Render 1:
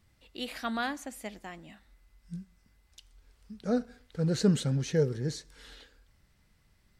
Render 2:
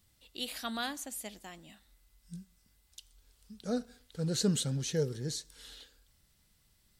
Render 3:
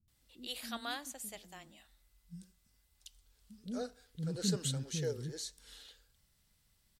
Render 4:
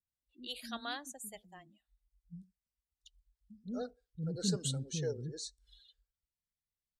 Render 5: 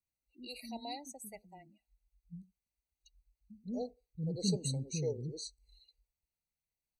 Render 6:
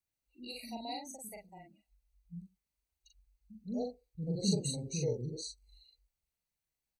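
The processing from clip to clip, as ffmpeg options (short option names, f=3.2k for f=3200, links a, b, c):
-af "aexciter=amount=3.1:drive=3.4:freq=3k,volume=-5dB"
-filter_complex "[0:a]acrossover=split=310[a][b];[b]adelay=80[c];[a][c]amix=inputs=2:normalize=0,volume=-3.5dB"
-af "afftdn=nr=26:nf=-49"
-af "afftfilt=real='re*eq(mod(floor(b*sr/1024/960),2),0)':imag='im*eq(mod(floor(b*sr/1024/960),2),0)':win_size=1024:overlap=0.75,volume=1dB"
-filter_complex "[0:a]asplit=2[a][b];[b]adelay=41,volume=-3dB[c];[a][c]amix=inputs=2:normalize=0"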